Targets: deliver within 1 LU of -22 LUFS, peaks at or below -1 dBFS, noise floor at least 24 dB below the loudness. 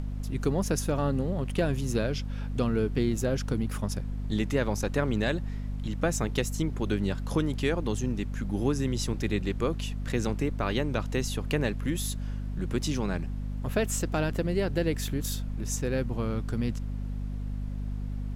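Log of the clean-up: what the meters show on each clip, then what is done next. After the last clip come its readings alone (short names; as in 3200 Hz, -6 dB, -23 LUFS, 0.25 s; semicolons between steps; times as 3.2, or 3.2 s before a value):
hum 50 Hz; harmonics up to 250 Hz; hum level -30 dBFS; noise floor -34 dBFS; noise floor target -54 dBFS; loudness -30.0 LUFS; peak -13.5 dBFS; loudness target -22.0 LUFS
-> de-hum 50 Hz, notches 5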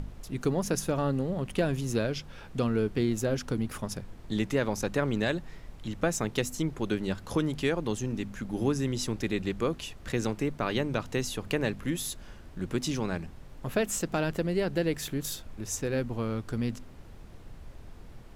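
hum none; noise floor -47 dBFS; noise floor target -55 dBFS
-> noise print and reduce 8 dB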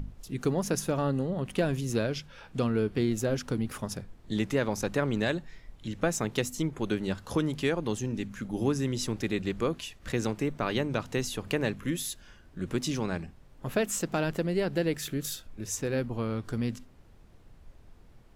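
noise floor -55 dBFS; loudness -31.0 LUFS; peak -14.5 dBFS; loudness target -22.0 LUFS
-> gain +9 dB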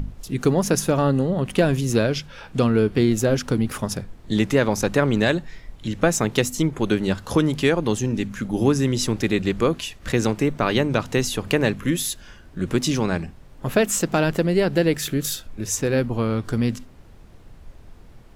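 loudness -22.0 LUFS; peak -5.5 dBFS; noise floor -46 dBFS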